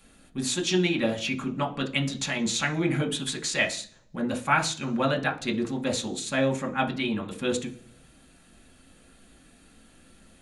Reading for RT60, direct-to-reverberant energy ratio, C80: 0.50 s, 0.5 dB, 19.0 dB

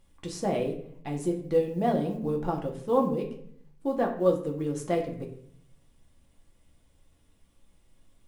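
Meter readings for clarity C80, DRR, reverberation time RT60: 12.0 dB, 0.0 dB, 0.65 s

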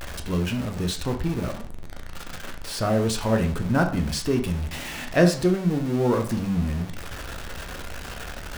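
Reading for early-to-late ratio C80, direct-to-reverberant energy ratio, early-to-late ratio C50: 15.0 dB, 3.5 dB, 10.5 dB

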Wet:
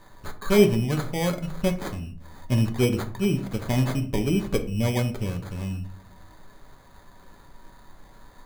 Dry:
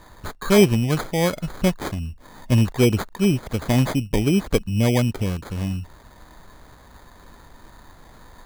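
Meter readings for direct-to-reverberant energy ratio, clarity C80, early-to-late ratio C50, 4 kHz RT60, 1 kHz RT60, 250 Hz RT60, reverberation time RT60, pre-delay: 4.5 dB, 18.0 dB, 13.0 dB, 0.30 s, 0.45 s, 0.80 s, 0.50 s, 5 ms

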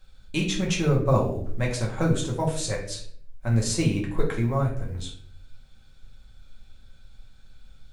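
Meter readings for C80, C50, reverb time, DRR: 11.0 dB, 6.5 dB, 0.55 s, -3.0 dB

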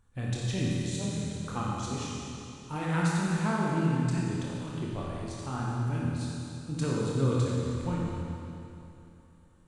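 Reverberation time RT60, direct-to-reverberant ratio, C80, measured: 2.9 s, -5.5 dB, -1.5 dB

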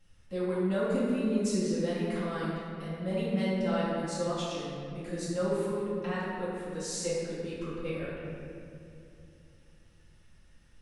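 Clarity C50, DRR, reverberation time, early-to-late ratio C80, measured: -2.5 dB, -12.5 dB, 2.6 s, -0.5 dB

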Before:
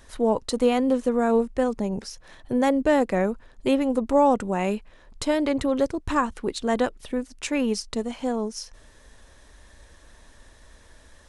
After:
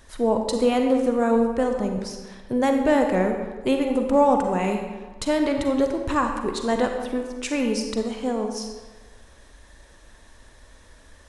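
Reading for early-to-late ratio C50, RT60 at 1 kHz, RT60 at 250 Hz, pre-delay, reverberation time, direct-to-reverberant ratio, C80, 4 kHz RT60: 4.5 dB, 1.4 s, 1.2 s, 37 ms, 1.4 s, 4.0 dB, 6.5 dB, 0.90 s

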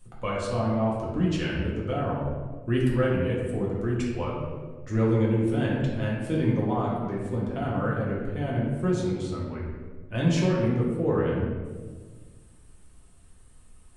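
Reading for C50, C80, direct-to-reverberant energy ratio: 0.5 dB, 3.0 dB, -5.0 dB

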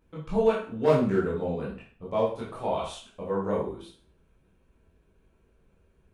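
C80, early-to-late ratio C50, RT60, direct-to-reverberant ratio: 9.0 dB, 4.0 dB, 0.45 s, -7.0 dB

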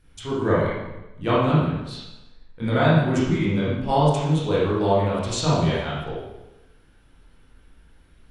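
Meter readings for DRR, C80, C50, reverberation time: -9.0 dB, 2.0 dB, -1.5 dB, 1.0 s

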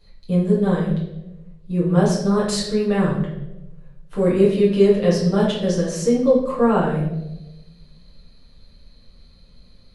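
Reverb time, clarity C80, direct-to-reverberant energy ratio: 1.0 s, 6.5 dB, -7.5 dB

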